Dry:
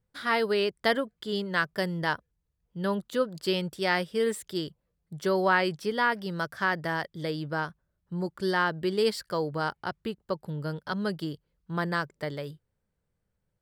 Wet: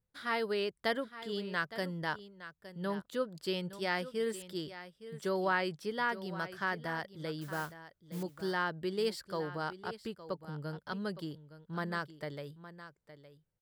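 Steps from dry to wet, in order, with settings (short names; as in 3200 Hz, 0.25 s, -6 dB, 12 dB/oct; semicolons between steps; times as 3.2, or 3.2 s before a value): 7.41–8.23 modulation noise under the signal 14 dB; on a send: echo 0.864 s -14 dB; on the sum: gain -7.5 dB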